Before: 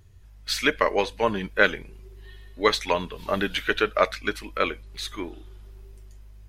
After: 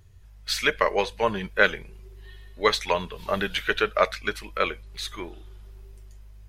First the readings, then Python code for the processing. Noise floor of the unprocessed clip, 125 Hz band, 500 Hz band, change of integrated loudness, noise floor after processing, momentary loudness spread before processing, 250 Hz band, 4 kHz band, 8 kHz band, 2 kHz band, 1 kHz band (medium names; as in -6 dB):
-48 dBFS, -0.5 dB, -0.5 dB, -0.5 dB, -48 dBFS, 12 LU, -4.0 dB, 0.0 dB, 0.0 dB, 0.0 dB, 0.0 dB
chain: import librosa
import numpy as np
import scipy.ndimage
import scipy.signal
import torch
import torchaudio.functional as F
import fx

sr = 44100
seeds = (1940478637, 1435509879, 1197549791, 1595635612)

y = fx.peak_eq(x, sr, hz=280.0, db=-10.5, octaves=0.37)